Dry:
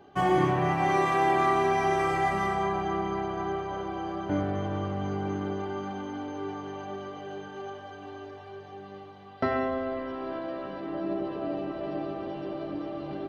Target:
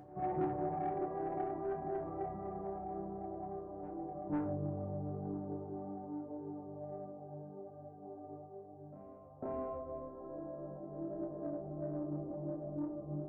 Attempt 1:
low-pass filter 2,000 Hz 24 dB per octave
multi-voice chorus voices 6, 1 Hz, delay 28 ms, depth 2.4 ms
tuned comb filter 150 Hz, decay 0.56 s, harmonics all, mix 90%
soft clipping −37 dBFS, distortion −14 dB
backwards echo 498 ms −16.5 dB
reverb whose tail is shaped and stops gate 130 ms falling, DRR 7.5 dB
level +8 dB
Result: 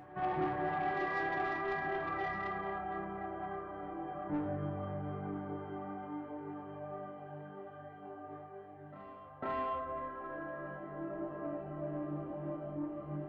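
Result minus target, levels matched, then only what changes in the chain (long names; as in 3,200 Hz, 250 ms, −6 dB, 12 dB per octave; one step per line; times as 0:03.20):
2,000 Hz band +18.5 dB
change: low-pass filter 730 Hz 24 dB per octave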